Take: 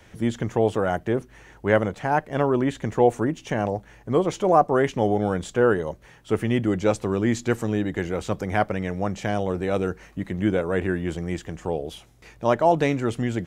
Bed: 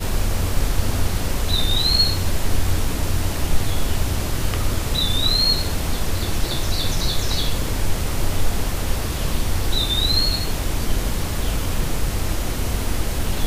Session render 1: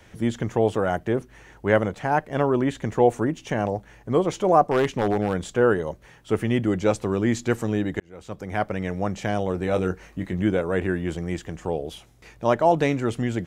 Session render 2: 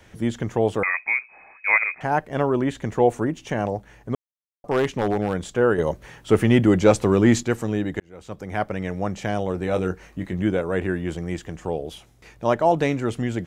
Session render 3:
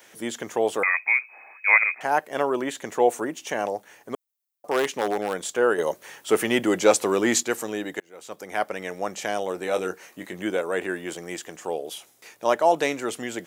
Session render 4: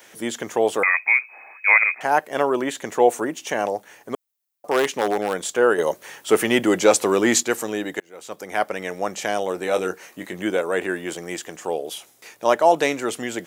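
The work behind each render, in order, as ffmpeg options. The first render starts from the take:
ffmpeg -i in.wav -filter_complex "[0:a]asettb=1/sr,asplit=3[link_01][link_02][link_03];[link_01]atrim=end=4.714[link_04];[link_02]atrim=start=4.71:end=5.5,asetpts=PTS-STARTPTS,afade=type=in:duration=0.004:curve=qsin,afade=type=out:start_time=0.786:duration=0.004:curve=qsin,aeval=exprs='0.224*(abs(mod(val(0)/0.224+3,4)-2)-1)':channel_layout=same[link_05];[link_03]atrim=start=5.496[link_06];[link_04][link_05]acrossfade=duration=0.004:curve1=hsin:curve2=qsin[link_07];[link_07][link_06]acrossfade=duration=0.004:curve1=qsin:curve2=hsin,asettb=1/sr,asplit=3[link_08][link_09][link_10];[link_08]atrim=end=9.594[link_11];[link_09]atrim=start=9.59:end=10.43,asetpts=PTS-STARTPTS,afade=type=in:duration=0.004:curve=qsin,afade=type=out:start_time=0.836:duration=0.004:curve=qsin,asplit=2[link_12][link_13];[link_13]adelay=22,volume=-8.5dB[link_14];[link_12][link_14]amix=inputs=2:normalize=0,atrim=end_sample=37044[link_15];[link_10]atrim=start=10.426[link_16];[link_11][link_15]acrossfade=duration=0.004:curve1=hsin:curve2=qsin[link_17];[link_17][link_16]acrossfade=duration=0.004:curve1=qsin:curve2=hsin,asplit=2[link_18][link_19];[link_18]atrim=end=8,asetpts=PTS-STARTPTS,afade=type=out:start_time=7.996:duration=0.004:curve=hsin[link_20];[link_19]atrim=start=8,asetpts=PTS-STARTPTS,afade=type=in:duration=0.86[link_21];[link_20][link_21]concat=n=2:v=0:a=1" out.wav
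ffmpeg -i in.wav -filter_complex "[0:a]asettb=1/sr,asplit=3[link_01][link_02][link_03];[link_01]atrim=end=0.834[link_04];[link_02]atrim=start=0.83:end=2.01,asetpts=PTS-STARTPTS,afade=type=in:duration=0.004:curve=qsin,afade=type=out:start_time=1.176:duration=0.004:curve=qsin,lowpass=frequency=2200:width_type=q:width=0.5098,lowpass=frequency=2200:width_type=q:width=0.6013,lowpass=frequency=2200:width_type=q:width=0.9,lowpass=frequency=2200:width_type=q:width=2.563,afreqshift=-2600[link_05];[link_03]atrim=start=2.006[link_06];[link_04][link_05]acrossfade=duration=0.004:curve1=hsin:curve2=qsin[link_07];[link_07][link_06]acrossfade=duration=0.004:curve1=qsin:curve2=hsin,asettb=1/sr,asplit=3[link_08][link_09][link_10];[link_08]atrim=end=5.784[link_11];[link_09]atrim=start=5.78:end=7.43,asetpts=PTS-STARTPTS,afade=type=in:duration=0.004:curve=qsin,afade=type=out:start_time=1.646:duration=0.004:curve=qsin,acontrast=69[link_12];[link_10]atrim=start=7.426[link_13];[link_11][link_12]acrossfade=duration=0.004:curve1=hsin:curve2=qsin[link_14];[link_14][link_13]acrossfade=duration=0.004:curve1=qsin:curve2=hsin,asplit=3[link_15][link_16][link_17];[link_15]atrim=end=4.15,asetpts=PTS-STARTPTS,afade=type=out:start_time=4.146:duration=0.004:curve=hsin[link_18];[link_16]atrim=start=4.15:end=4.64,asetpts=PTS-STARTPTS,volume=0[link_19];[link_17]atrim=start=4.64,asetpts=PTS-STARTPTS,afade=type=in:duration=0.004:curve=hsin[link_20];[link_18][link_19][link_20]concat=n=3:v=0:a=1" out.wav
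ffmpeg -i in.wav -af "highpass=390,aemphasis=mode=production:type=50kf" out.wav
ffmpeg -i in.wav -af "volume=3.5dB,alimiter=limit=-3dB:level=0:latency=1" out.wav

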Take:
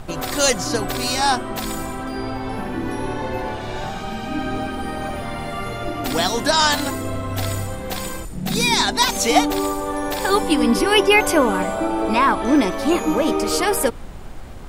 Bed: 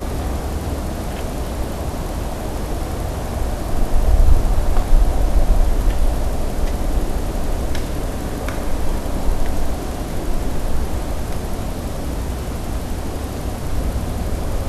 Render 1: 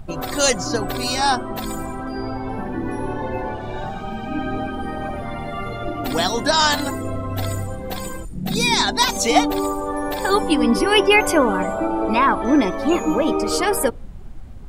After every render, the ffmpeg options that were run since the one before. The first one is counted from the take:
ffmpeg -i in.wav -af "afftdn=noise_reduction=12:noise_floor=-31" out.wav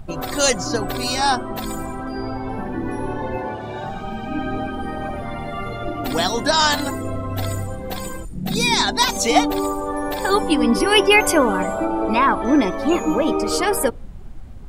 ffmpeg -i in.wav -filter_complex "[0:a]asettb=1/sr,asplit=3[link_01][link_02][link_03];[link_01]atrim=end=3.374[link_04];[link_02]atrim=start=3.37:end=3.88,asetpts=PTS-STARTPTS,afade=type=in:duration=0.004:curve=qsin,afade=type=out:start_time=0.506:duration=0.004:curve=qsin,highpass=88[link_05];[link_03]atrim=start=3.876[link_06];[link_04][link_05]acrossfade=duration=0.004:curve1=hsin:curve2=qsin[link_07];[link_07][link_06]acrossfade=duration=0.004:curve1=qsin:curve2=hsin,asettb=1/sr,asplit=3[link_08][link_09][link_10];[link_08]atrim=end=10.804[link_11];[link_09]atrim=start=10.8:end=11.85,asetpts=PTS-STARTPTS,afade=type=in:duration=0.004:curve=qsin,afade=type=out:start_time=1.046:duration=0.004:curve=qsin,highshelf=frequency=4100:gain=5[link_12];[link_10]atrim=start=11.846[link_13];[link_11][link_12]acrossfade=duration=0.004:curve1=hsin:curve2=qsin[link_14];[link_14][link_13]acrossfade=duration=0.004:curve1=qsin:curve2=hsin" out.wav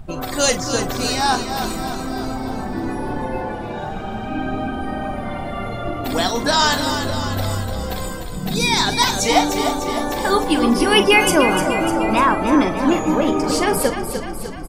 ffmpeg -i in.wav -filter_complex "[0:a]asplit=2[link_01][link_02];[link_02]adelay=42,volume=-11.5dB[link_03];[link_01][link_03]amix=inputs=2:normalize=0,asplit=9[link_04][link_05][link_06][link_07][link_08][link_09][link_10][link_11][link_12];[link_05]adelay=300,afreqshift=-31,volume=-8dB[link_13];[link_06]adelay=600,afreqshift=-62,volume=-12.4dB[link_14];[link_07]adelay=900,afreqshift=-93,volume=-16.9dB[link_15];[link_08]adelay=1200,afreqshift=-124,volume=-21.3dB[link_16];[link_09]adelay=1500,afreqshift=-155,volume=-25.7dB[link_17];[link_10]adelay=1800,afreqshift=-186,volume=-30.2dB[link_18];[link_11]adelay=2100,afreqshift=-217,volume=-34.6dB[link_19];[link_12]adelay=2400,afreqshift=-248,volume=-39.1dB[link_20];[link_04][link_13][link_14][link_15][link_16][link_17][link_18][link_19][link_20]amix=inputs=9:normalize=0" out.wav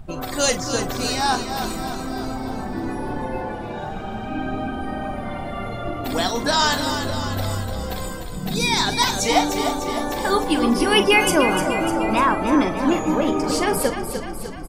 ffmpeg -i in.wav -af "volume=-2.5dB" out.wav

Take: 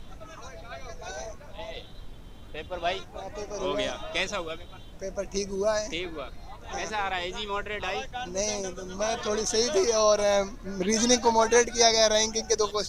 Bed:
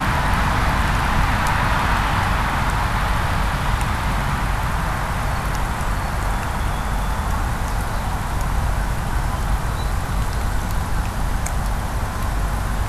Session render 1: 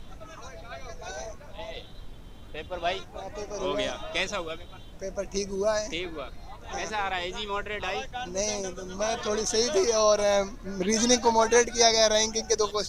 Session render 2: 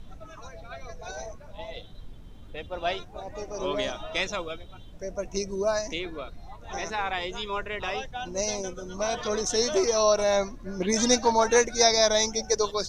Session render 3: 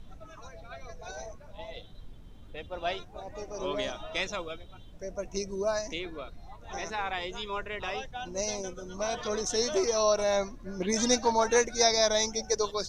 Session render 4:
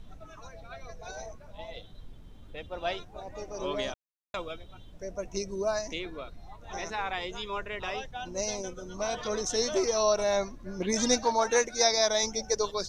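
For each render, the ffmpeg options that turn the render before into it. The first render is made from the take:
ffmpeg -i in.wav -af anull out.wav
ffmpeg -i in.wav -af "afftdn=noise_reduction=6:noise_floor=-45" out.wav
ffmpeg -i in.wav -af "volume=-3.5dB" out.wav
ffmpeg -i in.wav -filter_complex "[0:a]asettb=1/sr,asplit=3[link_01][link_02][link_03];[link_01]atrim=end=11.234[link_04];[link_02]atrim=start=11.23:end=12.23,asetpts=PTS-STARTPTS,afade=type=in:duration=0.004:curve=qsin,afade=type=out:start_time=0.996:duration=0.004:curve=qsin,lowshelf=frequency=180:gain=-9[link_05];[link_03]atrim=start=12.226[link_06];[link_04][link_05]acrossfade=duration=0.004:curve1=hsin:curve2=qsin[link_07];[link_07][link_06]acrossfade=duration=0.004:curve1=qsin:curve2=hsin,asplit=3[link_08][link_09][link_10];[link_08]atrim=end=3.94,asetpts=PTS-STARTPTS,afade=type=out:start_time=3.936:duration=0.004:curve=hsin[link_11];[link_09]atrim=start=3.94:end=4.34,asetpts=PTS-STARTPTS,volume=0[link_12];[link_10]atrim=start=4.34,asetpts=PTS-STARTPTS,afade=type=in:duration=0.004:curve=hsin[link_13];[link_11][link_12][link_13]concat=n=3:v=0:a=1" out.wav

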